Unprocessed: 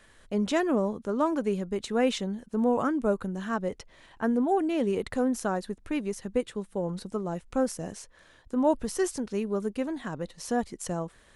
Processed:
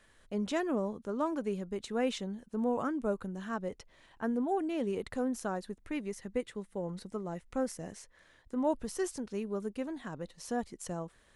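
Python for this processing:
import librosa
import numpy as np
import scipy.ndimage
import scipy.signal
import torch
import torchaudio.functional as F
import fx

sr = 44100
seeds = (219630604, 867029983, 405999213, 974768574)

y = fx.peak_eq(x, sr, hz=2000.0, db=7.0, octaves=0.23, at=(5.8, 8.66))
y = F.gain(torch.from_numpy(y), -6.5).numpy()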